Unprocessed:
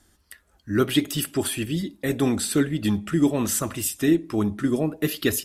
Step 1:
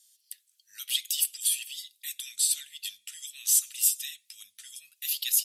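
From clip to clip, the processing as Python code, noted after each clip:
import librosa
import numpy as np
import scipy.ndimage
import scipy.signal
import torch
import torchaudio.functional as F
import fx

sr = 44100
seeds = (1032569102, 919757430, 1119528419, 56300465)

y = scipy.signal.sosfilt(scipy.signal.cheby2(4, 60, 890.0, 'highpass', fs=sr, output='sos'), x)
y = fx.high_shelf(y, sr, hz=5900.0, db=5.5)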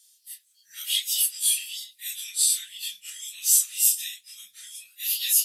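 y = fx.phase_scramble(x, sr, seeds[0], window_ms=100)
y = y * librosa.db_to_amplitude(4.0)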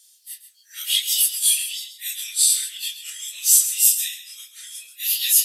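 y = fx.filter_sweep_highpass(x, sr, from_hz=500.0, to_hz=230.0, start_s=4.11, end_s=5.41, q=2.2)
y = fx.brickwall_highpass(y, sr, low_hz=180.0)
y = y + 10.0 ** (-11.5 / 20.0) * np.pad(y, (int(133 * sr / 1000.0), 0))[:len(y)]
y = y * librosa.db_to_amplitude(4.5)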